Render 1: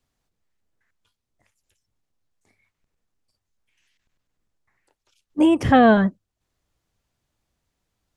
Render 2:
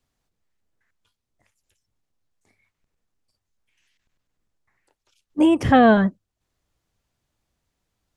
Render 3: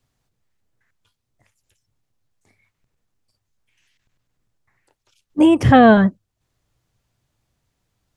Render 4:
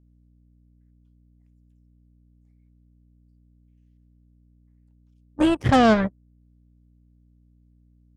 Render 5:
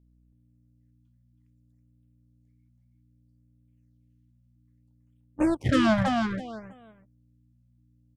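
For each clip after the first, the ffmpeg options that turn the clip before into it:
-af anull
-af "equalizer=f=120:w=2.8:g=8,volume=1.5"
-af "aeval=exprs='val(0)+0.0251*(sin(2*PI*60*n/s)+sin(2*PI*2*60*n/s)/2+sin(2*PI*3*60*n/s)/3+sin(2*PI*4*60*n/s)/4+sin(2*PI*5*60*n/s)/5)':c=same,aeval=exprs='0.891*(cos(1*acos(clip(val(0)/0.891,-1,1)))-cos(1*PI/2))+0.112*(cos(7*acos(clip(val(0)/0.891,-1,1)))-cos(7*PI/2))':c=same,volume=0.473"
-filter_complex "[0:a]asplit=2[s0][s1];[s1]aecho=0:1:326|652|978:0.596|0.119|0.0238[s2];[s0][s2]amix=inputs=2:normalize=0,afftfilt=real='re*(1-between(b*sr/1024,360*pow(5600/360,0.5+0.5*sin(2*PI*0.62*pts/sr))/1.41,360*pow(5600/360,0.5+0.5*sin(2*PI*0.62*pts/sr))*1.41))':imag='im*(1-between(b*sr/1024,360*pow(5600/360,0.5+0.5*sin(2*PI*0.62*pts/sr))/1.41,360*pow(5600/360,0.5+0.5*sin(2*PI*0.62*pts/sr))*1.41))':win_size=1024:overlap=0.75,volume=0.596"

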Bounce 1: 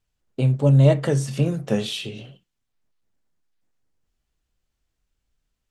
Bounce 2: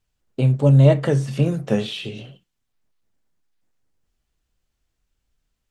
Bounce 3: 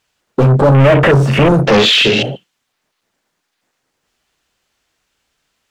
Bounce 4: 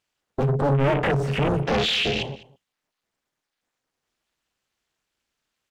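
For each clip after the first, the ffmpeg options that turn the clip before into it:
-filter_complex "[0:a]acrossover=split=3700[s0][s1];[s1]acompressor=threshold=0.00562:ratio=4:attack=1:release=60[s2];[s0][s2]amix=inputs=2:normalize=0,volume=1.26"
-filter_complex "[0:a]asplit=2[s0][s1];[s1]highpass=f=720:p=1,volume=100,asoftclip=type=tanh:threshold=0.841[s2];[s0][s2]amix=inputs=2:normalize=0,lowpass=f=5100:p=1,volume=0.501,afwtdn=0.158"
-af "tremolo=f=280:d=0.974,aecho=1:1:203:0.0944,volume=0.376"

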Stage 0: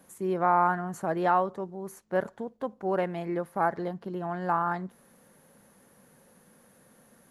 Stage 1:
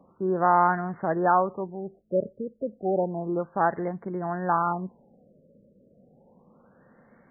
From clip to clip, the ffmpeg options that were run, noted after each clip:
-af "afftfilt=real='re*lt(b*sr/1024,620*pow(2300/620,0.5+0.5*sin(2*PI*0.31*pts/sr)))':imag='im*lt(b*sr/1024,620*pow(2300/620,0.5+0.5*sin(2*PI*0.31*pts/sr)))':win_size=1024:overlap=0.75,volume=1.41"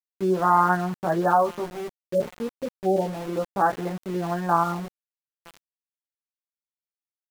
-filter_complex "[0:a]flanger=delay=15.5:depth=2.6:speed=0.3,asplit=2[s0][s1];[s1]adelay=942,lowpass=f=1600:p=1,volume=0.0708,asplit=2[s2][s3];[s3]adelay=942,lowpass=f=1600:p=1,volume=0.42,asplit=2[s4][s5];[s5]adelay=942,lowpass=f=1600:p=1,volume=0.42[s6];[s0][s2][s4][s6]amix=inputs=4:normalize=0,aeval=exprs='val(0)*gte(abs(val(0)),0.0106)':c=same,volume=1.68"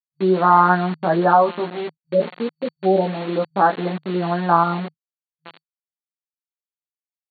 -af "acrusher=bits=5:mix=0:aa=0.5,afftfilt=real='re*between(b*sr/4096,160,4500)':imag='im*between(b*sr/4096,160,4500)':win_size=4096:overlap=0.75,volume=1.88"

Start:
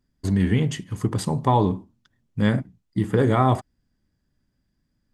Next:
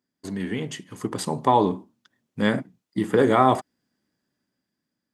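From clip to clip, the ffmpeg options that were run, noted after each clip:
-af "highpass=250,dynaudnorm=f=240:g=9:m=3.76,volume=0.668"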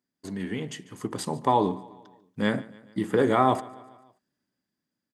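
-af "aecho=1:1:145|290|435|580:0.0891|0.049|0.027|0.0148,volume=0.668"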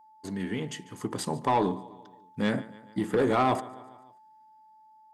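-af "asoftclip=type=tanh:threshold=0.141,aeval=exprs='val(0)+0.002*sin(2*PI*870*n/s)':c=same"

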